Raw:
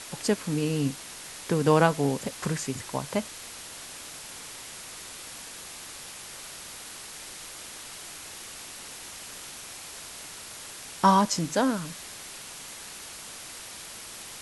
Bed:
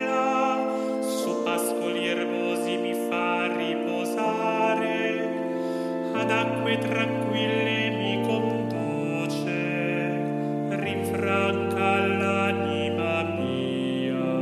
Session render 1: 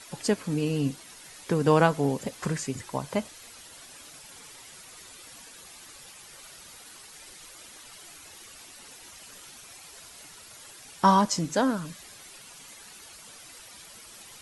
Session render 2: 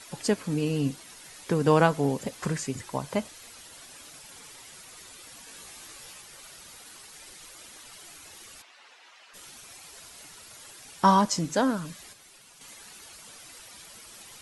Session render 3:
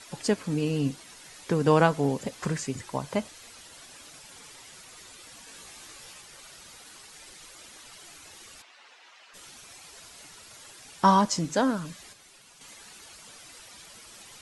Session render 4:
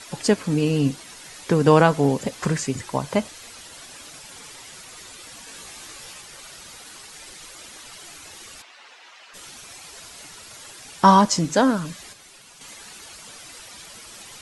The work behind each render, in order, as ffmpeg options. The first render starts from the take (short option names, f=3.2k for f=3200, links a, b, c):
-af "afftdn=nr=10:nf=-43"
-filter_complex "[0:a]asettb=1/sr,asplit=3[a][b][c];[a]atrim=end=5.464[d];[b]atrim=start=5.46:end=6.21,asetpts=PTS-STARTPTS,afade=t=in:d=0.004:c=qsin,afade=t=out:st=0.746:d=0.004:c=qsin,asplit=2[e][f];[f]adelay=18,volume=-2.5dB[g];[e][g]amix=inputs=2:normalize=0,atrim=end_sample=33075[h];[c]atrim=start=6.206[i];[d][h]acrossfade=d=0.004:c1=hsin:c2=qsin[j];[j][i]acrossfade=d=0.004:c1=qsin:c2=hsin,asplit=3[k][l][m];[k]afade=t=out:st=8.61:d=0.02[n];[l]highpass=690,lowpass=3.2k,afade=t=in:st=8.61:d=0.02,afade=t=out:st=9.33:d=0.02[o];[m]afade=t=in:st=9.33:d=0.02[p];[n][o][p]amix=inputs=3:normalize=0,asplit=3[q][r][s];[q]atrim=end=12.132[t];[r]atrim=start=12.128:end=12.612,asetpts=PTS-STARTPTS,volume=-6dB[u];[s]atrim=start=12.608[v];[t][u]acrossfade=d=0.004:c1=hsin:c2=hsin[w];[w][v]acrossfade=d=0.004:c1=hsin:c2=hsin"
-af "lowpass=10k"
-af "volume=6.5dB,alimiter=limit=-2dB:level=0:latency=1"